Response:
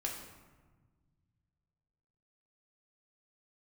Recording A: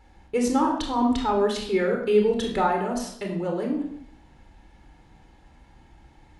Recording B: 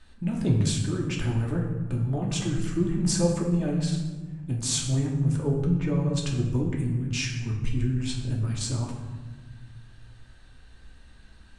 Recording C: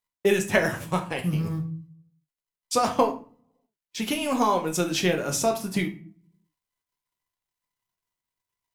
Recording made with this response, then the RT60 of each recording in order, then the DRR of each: B; 0.70 s, 1.3 s, 0.40 s; 1.5 dB, -2.0 dB, 3.5 dB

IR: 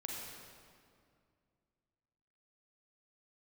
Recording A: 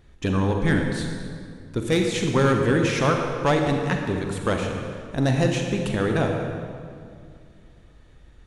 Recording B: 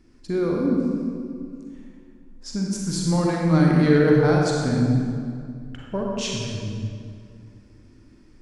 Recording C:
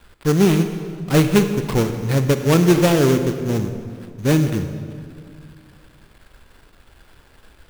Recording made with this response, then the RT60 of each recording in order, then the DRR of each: B; 2.3 s, 2.2 s, 2.3 s; 2.5 dB, -2.0 dB, 8.0 dB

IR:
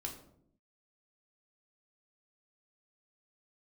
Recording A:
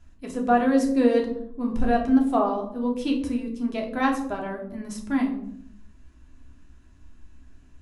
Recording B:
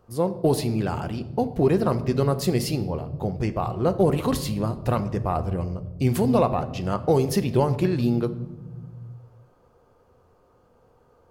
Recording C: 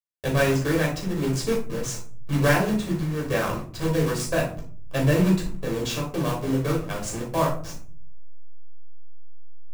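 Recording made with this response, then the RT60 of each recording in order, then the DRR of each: A; 0.70 s, 1.3 s, 0.45 s; 0.0 dB, 9.5 dB, -3.5 dB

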